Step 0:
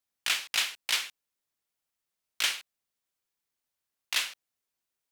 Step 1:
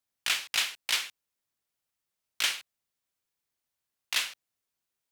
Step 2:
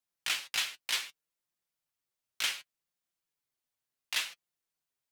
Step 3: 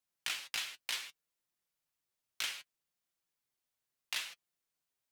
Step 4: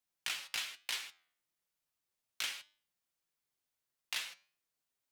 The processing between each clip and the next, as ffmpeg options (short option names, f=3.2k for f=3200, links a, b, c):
-af "equalizer=f=110:t=o:w=1.1:g=4"
-af "flanger=delay=5.6:depth=2.5:regen=40:speed=0.67:shape=sinusoidal"
-af "acompressor=threshold=-34dB:ratio=6"
-af "flanger=delay=9.9:depth=2.6:regen=87:speed=1.1:shape=sinusoidal,volume=4dB"